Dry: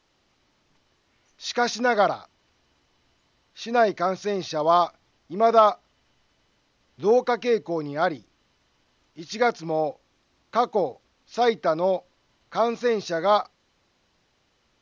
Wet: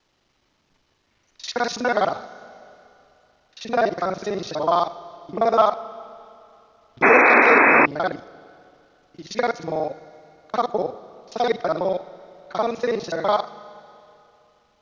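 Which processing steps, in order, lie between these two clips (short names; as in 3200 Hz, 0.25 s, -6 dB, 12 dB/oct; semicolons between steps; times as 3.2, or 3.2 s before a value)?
local time reversal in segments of 41 ms; Schroeder reverb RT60 2.8 s, combs from 26 ms, DRR 15.5 dB; painted sound noise, 7.02–7.86, 230–2600 Hz -14 dBFS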